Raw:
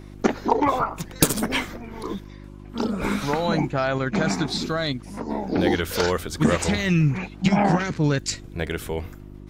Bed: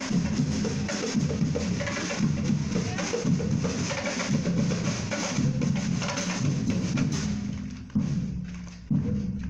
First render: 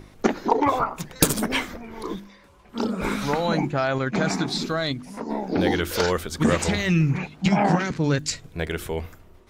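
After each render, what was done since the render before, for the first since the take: de-hum 50 Hz, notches 7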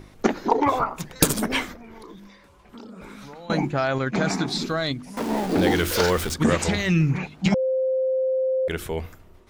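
1.72–3.50 s: compression, threshold -39 dBFS; 5.17–6.34 s: jump at every zero crossing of -26.5 dBFS; 7.54–8.68 s: bleep 522 Hz -19.5 dBFS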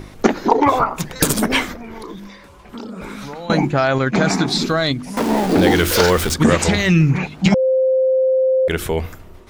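in parallel at -1 dB: compression, threshold -29 dBFS, peak gain reduction 16 dB; on the sum: loudness maximiser +4.5 dB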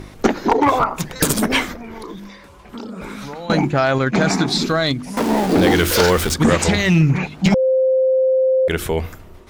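one-sided clip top -9.5 dBFS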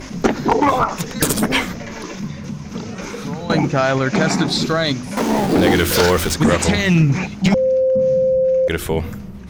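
add bed -3 dB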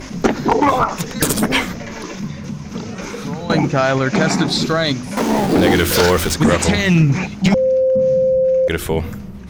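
trim +1 dB; peak limiter -3 dBFS, peak gain reduction 1 dB

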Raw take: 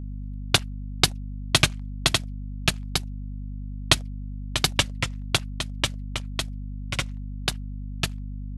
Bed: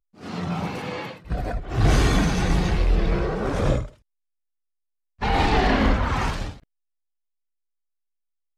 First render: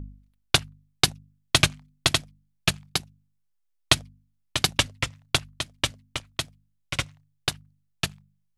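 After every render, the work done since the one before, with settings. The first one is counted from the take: de-hum 50 Hz, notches 5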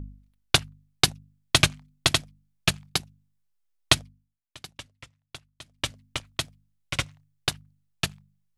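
3.94–6.04 s: dip -20 dB, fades 0.47 s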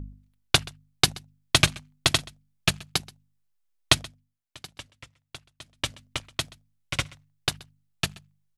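delay 128 ms -22.5 dB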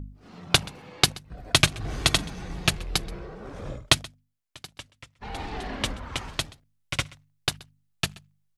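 add bed -15 dB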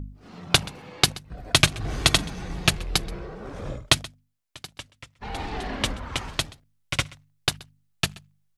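trim +2.5 dB; peak limiter -2 dBFS, peak gain reduction 2.5 dB

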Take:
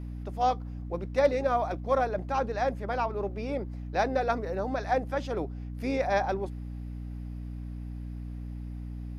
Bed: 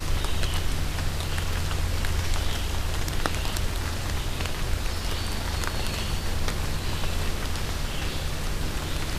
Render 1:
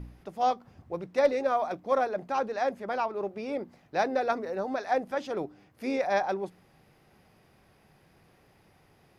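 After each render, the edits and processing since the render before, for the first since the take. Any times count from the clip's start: de-hum 60 Hz, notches 5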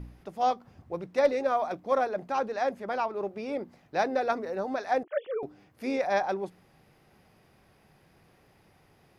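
5.03–5.43 s: formants replaced by sine waves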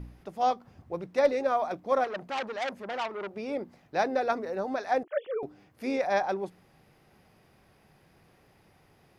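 2.04–3.36 s: transformer saturation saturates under 2.6 kHz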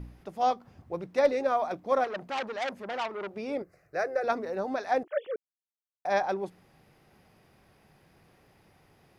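3.62–4.24 s: static phaser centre 900 Hz, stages 6; 5.36–6.05 s: mute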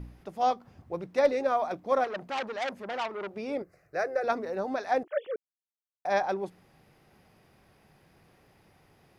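no audible change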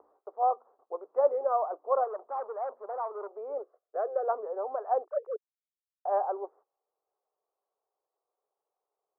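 gate -51 dBFS, range -21 dB; elliptic band-pass 420–1200 Hz, stop band 50 dB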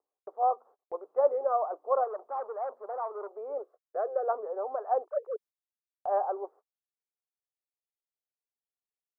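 band-stop 970 Hz, Q 30; gate -53 dBFS, range -26 dB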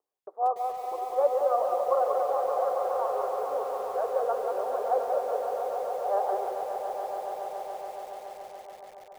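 echo with a slow build-up 141 ms, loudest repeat 5, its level -9.5 dB; bit-crushed delay 184 ms, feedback 35%, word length 8-bit, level -5 dB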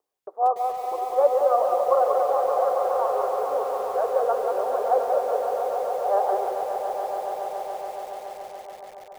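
trim +5 dB

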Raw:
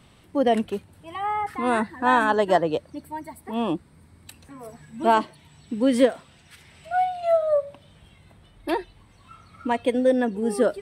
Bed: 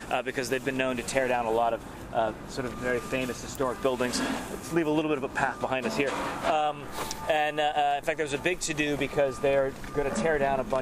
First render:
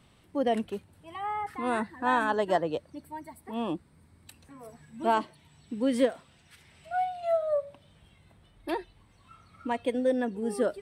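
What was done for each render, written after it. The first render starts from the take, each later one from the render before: trim -6.5 dB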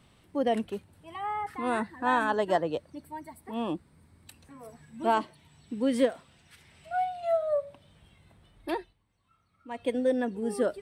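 8.75–9.89 s: dip -14.5 dB, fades 0.22 s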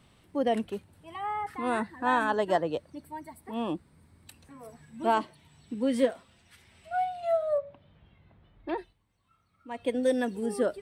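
5.74–6.93 s: comb of notches 150 Hz; 7.58–8.78 s: distance through air 310 m; 10.03–10.46 s: treble shelf 3.2 kHz +12 dB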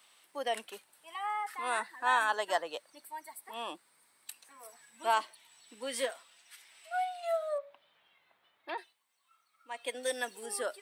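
high-pass 860 Hz 12 dB/octave; treble shelf 4.7 kHz +9 dB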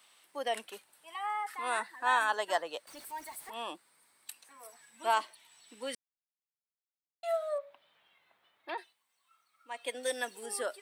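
2.87–3.50 s: jump at every zero crossing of -48 dBFS; 5.95–7.23 s: mute

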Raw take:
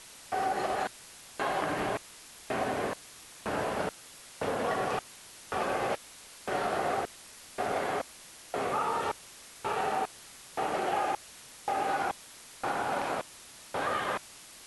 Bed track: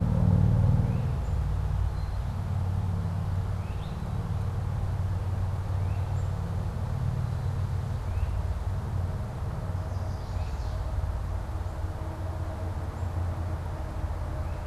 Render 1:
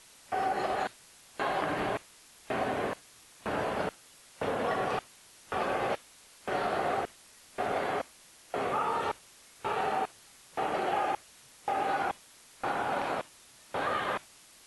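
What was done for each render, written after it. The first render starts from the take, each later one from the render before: noise print and reduce 6 dB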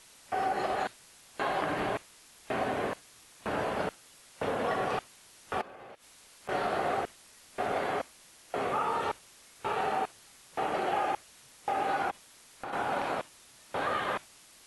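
5.61–6.49 s: compression 12:1, threshold -45 dBFS; 12.10–12.73 s: compression, threshold -35 dBFS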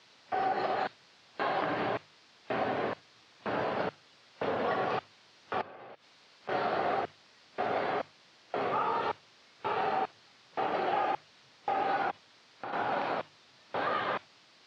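elliptic band-pass 100–4700 Hz, stop band 60 dB; hum notches 50/100/150 Hz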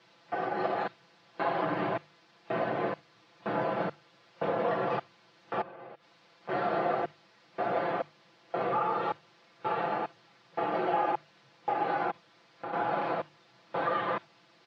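treble shelf 2.5 kHz -11 dB; comb 5.9 ms, depth 96%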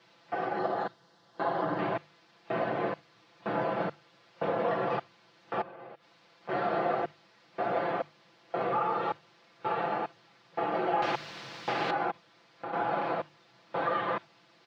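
0.59–1.79 s: peaking EQ 2.4 kHz -13 dB 0.48 oct; 11.02–11.91 s: spectrum-flattening compressor 2:1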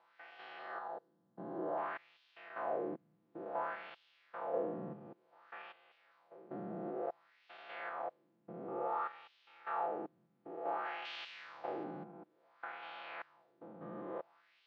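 spectrogram pixelated in time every 200 ms; LFO band-pass sine 0.56 Hz 200–3200 Hz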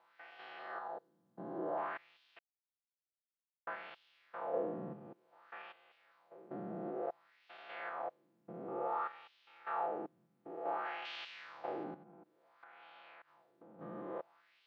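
2.39–3.67 s: mute; 11.94–13.79 s: compression, threshold -55 dBFS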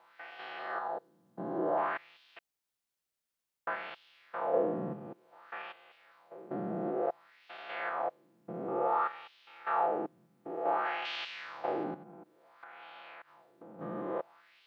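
trim +7.5 dB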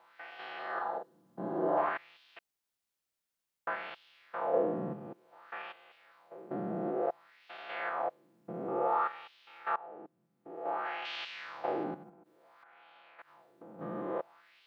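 0.73–1.89 s: doubling 43 ms -4.5 dB; 9.76–11.49 s: fade in, from -23 dB; 12.09–13.19 s: compression, threshold -56 dBFS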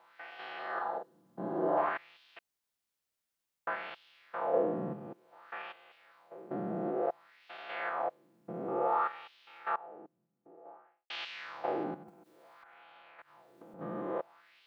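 9.55–11.10 s: studio fade out; 12.08–13.74 s: three bands compressed up and down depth 70%

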